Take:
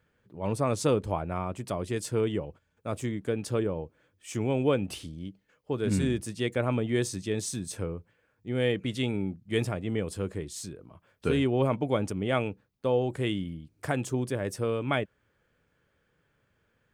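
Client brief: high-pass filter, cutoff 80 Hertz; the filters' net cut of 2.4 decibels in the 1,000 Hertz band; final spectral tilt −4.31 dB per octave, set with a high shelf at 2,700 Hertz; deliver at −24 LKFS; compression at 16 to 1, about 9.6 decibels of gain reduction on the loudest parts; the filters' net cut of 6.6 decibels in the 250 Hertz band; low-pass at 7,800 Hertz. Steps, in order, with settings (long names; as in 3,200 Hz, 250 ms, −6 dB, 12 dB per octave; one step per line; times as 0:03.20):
high-pass filter 80 Hz
low-pass filter 7,800 Hz
parametric band 250 Hz −8.5 dB
parametric band 1,000 Hz −3.5 dB
high-shelf EQ 2,700 Hz +5 dB
downward compressor 16 to 1, threshold −32 dBFS
level +14.5 dB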